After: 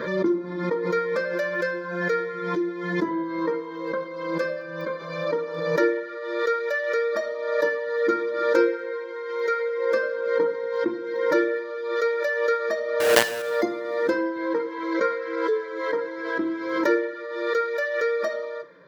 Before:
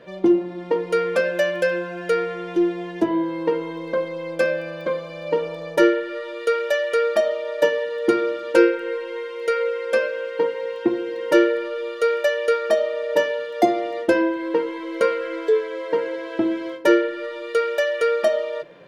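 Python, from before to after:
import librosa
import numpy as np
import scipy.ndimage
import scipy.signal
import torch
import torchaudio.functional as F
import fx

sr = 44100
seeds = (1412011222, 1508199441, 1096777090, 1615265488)

y = fx.spec_quant(x, sr, step_db=15)
y = fx.peak_eq(y, sr, hz=870.0, db=10.0, octaves=1.5)
y = fx.fixed_phaser(y, sr, hz=2800.0, stages=6)
y = fx.quant_companded(y, sr, bits=2, at=(13.0, 13.42))
y = fx.highpass(y, sr, hz=130.0, slope=6)
y = fx.low_shelf(y, sr, hz=340.0, db=9.0, at=(9.72, 10.7), fade=0.02)
y = fx.steep_lowpass(y, sr, hz=7200.0, slope=96, at=(14.93, 15.35), fade=0.02)
y = fx.rev_double_slope(y, sr, seeds[0], early_s=0.61, late_s=2.4, knee_db=-24, drr_db=11.5)
y = fx.pre_swell(y, sr, db_per_s=45.0)
y = y * 10.0 ** (-5.0 / 20.0)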